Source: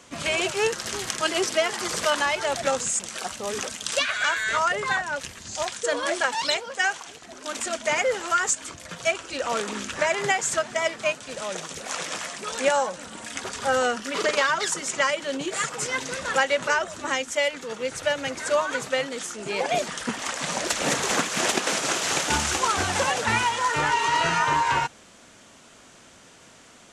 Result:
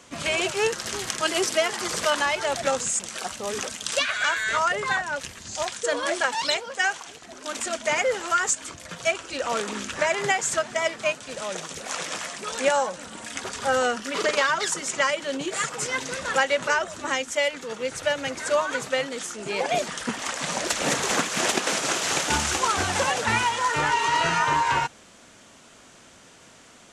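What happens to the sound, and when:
0:01.27–0:01.68: high-shelf EQ 11,000 Hz +9 dB

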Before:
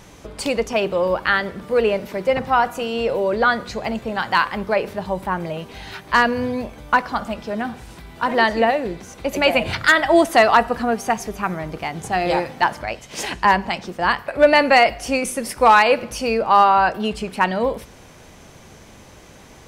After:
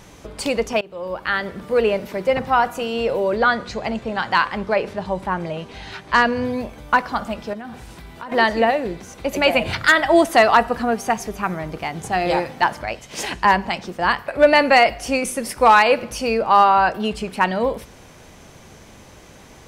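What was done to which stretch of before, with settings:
0:00.81–0:01.60: fade in, from −24 dB
0:03.37–0:06.45: low-pass filter 8,200 Hz
0:07.53–0:08.32: downward compressor 12 to 1, threshold −29 dBFS

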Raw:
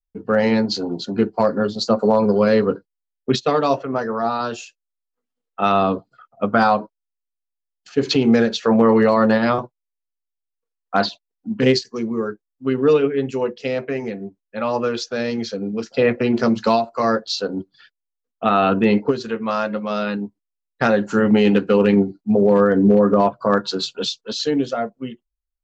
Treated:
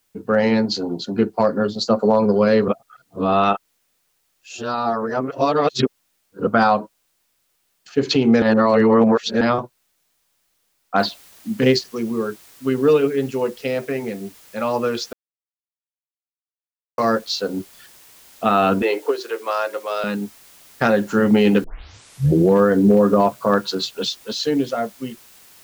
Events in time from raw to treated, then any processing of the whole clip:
0:02.68–0:06.47: reverse
0:08.42–0:09.41: reverse
0:10.99: noise floor change −68 dB −48 dB
0:15.13–0:16.98: silence
0:18.82–0:20.04: Butterworth high-pass 330 Hz 48 dB per octave
0:21.64: tape start 0.92 s

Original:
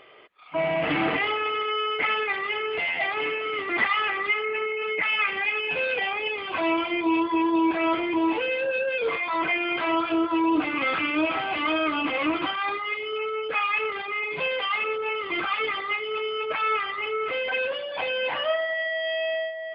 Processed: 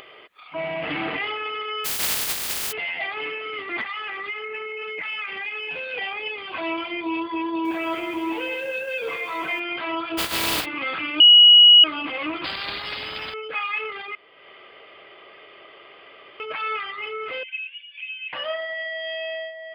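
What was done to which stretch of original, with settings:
0:01.84–0:02.71: compressing power law on the bin magnitudes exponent 0.1
0:03.81–0:05.94: downward compressor 5 to 1, threshold −25 dBFS
0:07.49–0:09.60: feedback echo at a low word length 159 ms, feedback 35%, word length 8 bits, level −8 dB
0:10.17–0:10.64: compressing power law on the bin magnitudes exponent 0.26
0:11.20–0:11.84: beep over 2,910 Hz −6.5 dBFS
0:12.44–0:13.34: every bin compressed towards the loudest bin 4 to 1
0:14.15–0:16.40: fill with room tone
0:17.43–0:18.33: flat-topped band-pass 2,600 Hz, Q 3.8
whole clip: high-shelf EQ 2,900 Hz +8 dB; upward compression, threshold −33 dBFS; level −4.5 dB

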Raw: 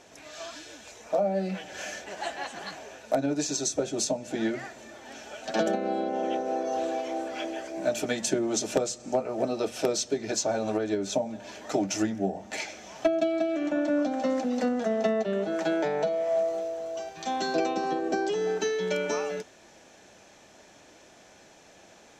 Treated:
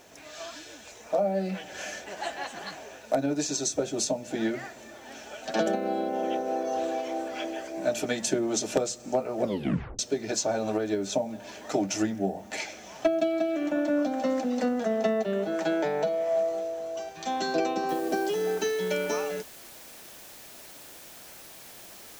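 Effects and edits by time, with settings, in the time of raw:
0:09.41: tape stop 0.58 s
0:17.89: noise floor change −66 dB −48 dB

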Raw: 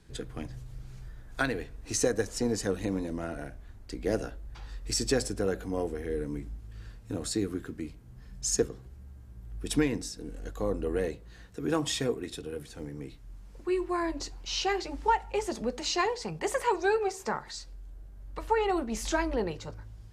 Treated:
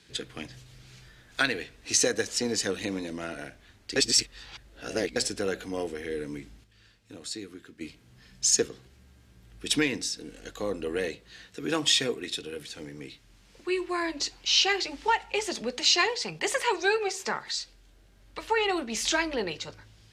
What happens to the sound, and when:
0:03.96–0:05.16: reverse
0:06.64–0:07.81: clip gain −9.5 dB
whole clip: meter weighting curve D

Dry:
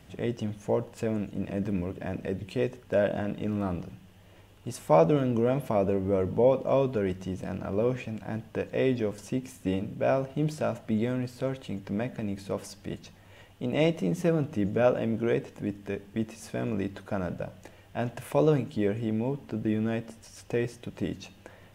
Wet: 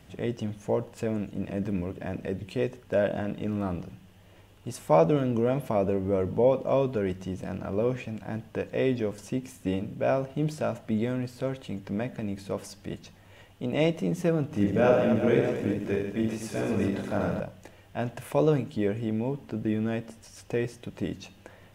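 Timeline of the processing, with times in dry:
0:14.48–0:17.40: reverse bouncing-ball delay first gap 30 ms, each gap 1.5×, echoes 6, each echo −2 dB

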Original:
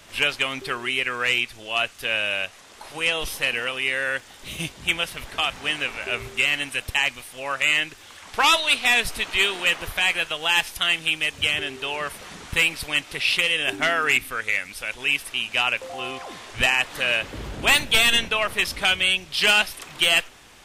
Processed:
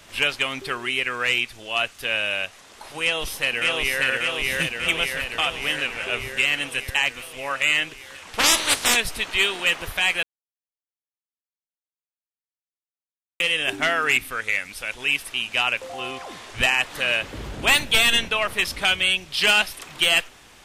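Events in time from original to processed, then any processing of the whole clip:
0:03.02–0:04.03: delay throw 590 ms, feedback 70%, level −1 dB
0:08.38–0:08.95: ceiling on every frequency bin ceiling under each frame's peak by 25 dB
0:10.23–0:13.40: silence

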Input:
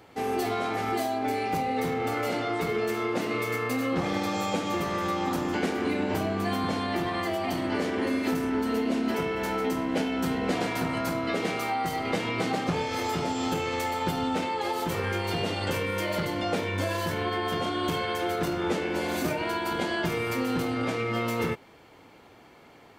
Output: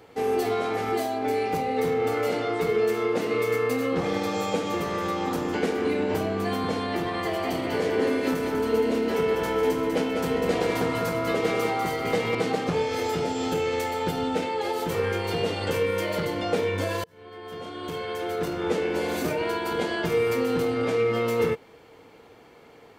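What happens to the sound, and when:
0:07.05–0:12.35: repeating echo 197 ms, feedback 42%, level −5.5 dB
0:12.92–0:14.89: notch filter 1,100 Hz, Q 6.2
0:17.04–0:18.86: fade in
whole clip: parametric band 460 Hz +10.5 dB 0.2 octaves

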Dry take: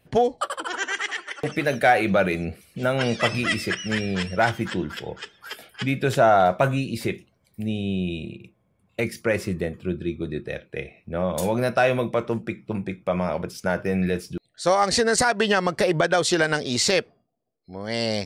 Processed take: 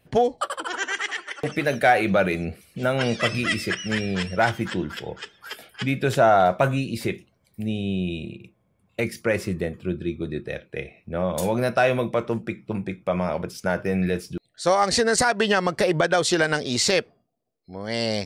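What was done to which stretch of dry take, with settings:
0:03.21–0:03.69: parametric band 850 Hz −11 dB 0.38 octaves

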